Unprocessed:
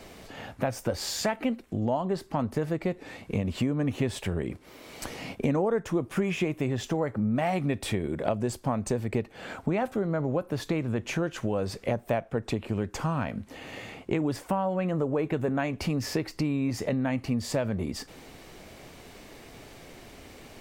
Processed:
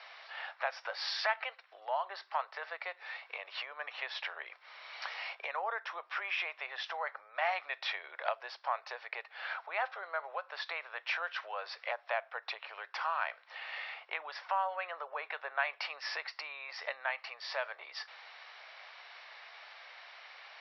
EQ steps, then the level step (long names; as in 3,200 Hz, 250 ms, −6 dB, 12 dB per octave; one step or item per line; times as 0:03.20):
Bessel high-pass filter 1,200 Hz, order 8
Chebyshev low-pass with heavy ripple 5,600 Hz, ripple 3 dB
high-frequency loss of the air 180 metres
+6.5 dB